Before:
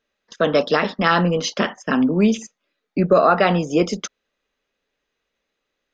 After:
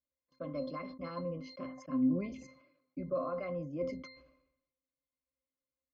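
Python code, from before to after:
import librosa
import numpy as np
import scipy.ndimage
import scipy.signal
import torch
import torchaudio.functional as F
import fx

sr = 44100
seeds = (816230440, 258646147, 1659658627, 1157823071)

y = fx.octave_resonator(x, sr, note='C', decay_s=0.16)
y = fx.sustainer(y, sr, db_per_s=71.0)
y = y * librosa.db_to_amplitude(-8.5)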